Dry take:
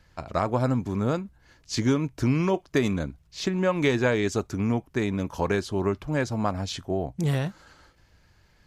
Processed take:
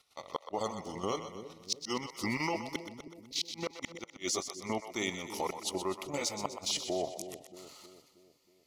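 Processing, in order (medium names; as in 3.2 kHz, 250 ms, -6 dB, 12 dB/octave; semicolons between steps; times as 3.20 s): pitch bend over the whole clip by -3 st ending unshifted; RIAA curve recording; spectral gate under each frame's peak -30 dB strong; bass shelf 230 Hz -10 dB; level held to a coarse grid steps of 9 dB; waveshaping leveller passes 1; inverted gate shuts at -19 dBFS, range -41 dB; Butterworth band-stop 1.6 kHz, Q 2.8; two-band feedback delay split 480 Hz, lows 317 ms, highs 125 ms, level -9.5 dB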